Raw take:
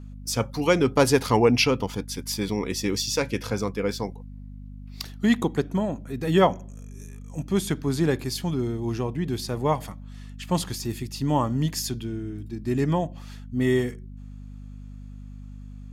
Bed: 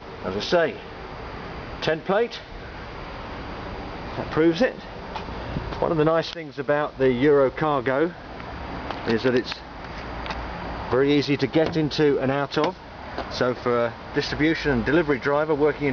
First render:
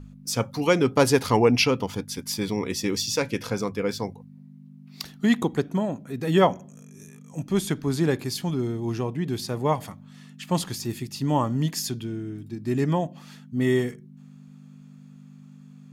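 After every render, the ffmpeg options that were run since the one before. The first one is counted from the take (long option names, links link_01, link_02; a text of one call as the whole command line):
ffmpeg -i in.wav -af "bandreject=frequency=50:width_type=h:width=4,bandreject=frequency=100:width_type=h:width=4" out.wav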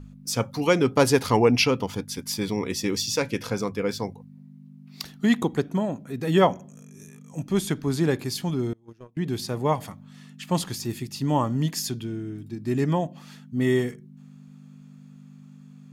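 ffmpeg -i in.wav -filter_complex "[0:a]asettb=1/sr,asplit=3[link_01][link_02][link_03];[link_01]atrim=end=8.734[link_04];[link_02]atrim=start=8.73:end=9.17,asetpts=PTS-STARTPTS,afade=type=in:duration=0.004:curve=qsin,afade=type=out:start_time=0.436:duration=0.004:curve=qsin,agate=range=-30dB:threshold=-24dB:ratio=16:release=100:detection=peak[link_05];[link_03]atrim=start=9.166[link_06];[link_04][link_05]acrossfade=duration=0.004:curve1=hsin:curve2=qsin[link_07];[link_07][link_06]acrossfade=duration=0.004:curve1=qsin:curve2=hsin" out.wav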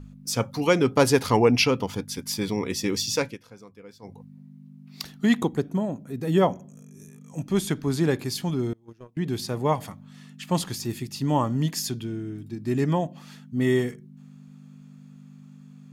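ffmpeg -i in.wav -filter_complex "[0:a]asettb=1/sr,asplit=3[link_01][link_02][link_03];[link_01]atrim=end=5.494[link_04];[link_02]atrim=start=5.49:end=7.22,asetpts=PTS-STARTPTS,afade=type=in:duration=0.004:curve=qsin,afade=type=out:start_time=1.726:duration=0.004:curve=qsin,equalizer=frequency=2400:width=0.35:gain=-6[link_05];[link_03]atrim=start=7.216[link_06];[link_04][link_05]acrossfade=duration=0.004:curve1=hsin:curve2=qsin[link_07];[link_07][link_06]acrossfade=duration=0.004:curve1=qsin:curve2=hsin,asplit=3[link_08][link_09][link_10];[link_08]atrim=end=3.38,asetpts=PTS-STARTPTS,afade=type=out:start_time=3.21:duration=0.17:silence=0.105925[link_11];[link_09]atrim=start=3.38:end=4.02,asetpts=PTS-STARTPTS,volume=-19.5dB[link_12];[link_10]atrim=start=4.02,asetpts=PTS-STARTPTS,afade=type=in:duration=0.17:silence=0.105925[link_13];[link_11][link_12][link_13]concat=n=3:v=0:a=1" out.wav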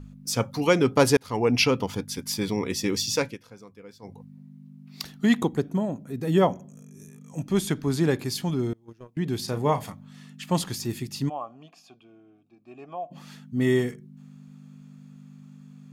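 ffmpeg -i in.wav -filter_complex "[0:a]asettb=1/sr,asplit=3[link_01][link_02][link_03];[link_01]atrim=end=9.444[link_04];[link_02]atrim=start=9.44:end=9.92,asetpts=PTS-STARTPTS,afade=type=in:duration=0.004:curve=qsin,afade=type=out:start_time=0.476:duration=0.004:curve=qsin,asplit=2[link_05][link_06];[link_06]adelay=35,volume=-10dB[link_07];[link_05][link_07]amix=inputs=2:normalize=0,atrim=end_sample=21168[link_08];[link_03]atrim=start=9.916[link_09];[link_04][link_08]acrossfade=duration=0.004:curve1=hsin:curve2=qsin[link_10];[link_10][link_09]acrossfade=duration=0.004:curve1=qsin:curve2=hsin,asplit=3[link_11][link_12][link_13];[link_11]afade=type=out:start_time=11.28:duration=0.02[link_14];[link_12]asplit=3[link_15][link_16][link_17];[link_15]bandpass=frequency=730:width_type=q:width=8,volume=0dB[link_18];[link_16]bandpass=frequency=1090:width_type=q:width=8,volume=-6dB[link_19];[link_17]bandpass=frequency=2440:width_type=q:width=8,volume=-9dB[link_20];[link_18][link_19][link_20]amix=inputs=3:normalize=0,afade=type=in:start_time=11.28:duration=0.02,afade=type=out:start_time=13.1:duration=0.02[link_21];[link_13]afade=type=in:start_time=13.1:duration=0.02[link_22];[link_14][link_21][link_22]amix=inputs=3:normalize=0,asplit=2[link_23][link_24];[link_23]atrim=end=1.17,asetpts=PTS-STARTPTS,afade=type=out:start_time=1.166:duration=0.004:curve=hsin[link_25];[link_24]atrim=start=1.17,asetpts=PTS-STARTPTS,afade=type=in:duration=0.46[link_26];[link_25][link_26]concat=n=2:v=0:a=1" out.wav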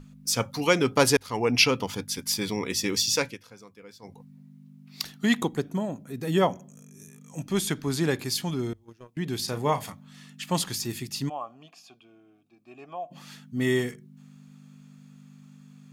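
ffmpeg -i in.wav -af "tiltshelf=frequency=1100:gain=-3.5,bandreject=frequency=50:width_type=h:width=6,bandreject=frequency=100:width_type=h:width=6" out.wav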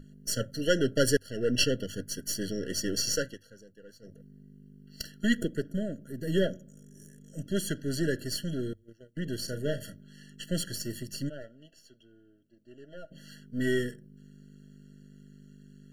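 ffmpeg -i in.wav -af "aeval=exprs='if(lt(val(0),0),0.447*val(0),val(0))':channel_layout=same,afftfilt=real='re*eq(mod(floor(b*sr/1024/670),2),0)':imag='im*eq(mod(floor(b*sr/1024/670),2),0)':win_size=1024:overlap=0.75" out.wav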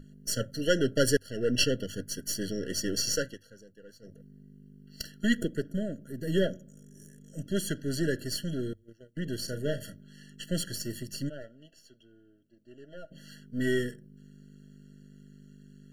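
ffmpeg -i in.wav -af anull out.wav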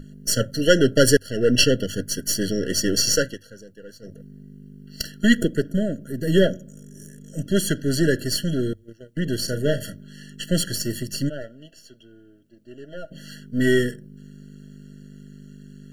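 ffmpeg -i in.wav -af "volume=9.5dB,alimiter=limit=-2dB:level=0:latency=1" out.wav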